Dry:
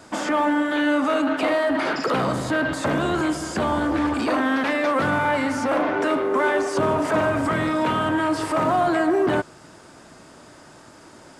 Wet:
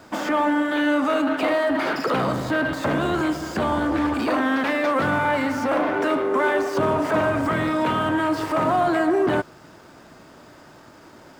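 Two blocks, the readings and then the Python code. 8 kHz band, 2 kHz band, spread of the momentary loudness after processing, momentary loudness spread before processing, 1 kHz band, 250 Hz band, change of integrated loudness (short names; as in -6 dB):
-4.5 dB, 0.0 dB, 3 LU, 3 LU, 0.0 dB, 0.0 dB, 0.0 dB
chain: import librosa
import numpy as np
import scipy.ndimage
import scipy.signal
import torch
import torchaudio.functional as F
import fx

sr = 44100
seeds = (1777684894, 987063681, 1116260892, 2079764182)

y = scipy.signal.medfilt(x, 5)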